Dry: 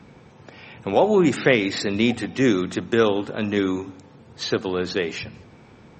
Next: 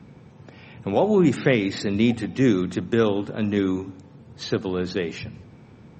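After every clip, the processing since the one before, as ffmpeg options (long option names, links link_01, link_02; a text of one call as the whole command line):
ffmpeg -i in.wav -af "equalizer=frequency=130:width=0.47:gain=8.5,volume=-5dB" out.wav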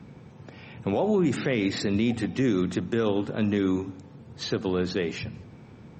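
ffmpeg -i in.wav -af "alimiter=limit=-15.5dB:level=0:latency=1:release=71" out.wav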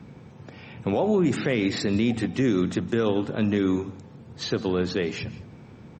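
ffmpeg -i in.wav -af "aecho=1:1:163:0.112,volume=1.5dB" out.wav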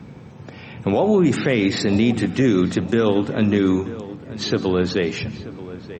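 ffmpeg -i in.wav -filter_complex "[0:a]asplit=2[link_01][link_02];[link_02]adelay=934,lowpass=frequency=2900:poles=1,volume=-15.5dB,asplit=2[link_03][link_04];[link_04]adelay=934,lowpass=frequency=2900:poles=1,volume=0.4,asplit=2[link_05][link_06];[link_06]adelay=934,lowpass=frequency=2900:poles=1,volume=0.4,asplit=2[link_07][link_08];[link_08]adelay=934,lowpass=frequency=2900:poles=1,volume=0.4[link_09];[link_01][link_03][link_05][link_07][link_09]amix=inputs=5:normalize=0,volume=5.5dB" out.wav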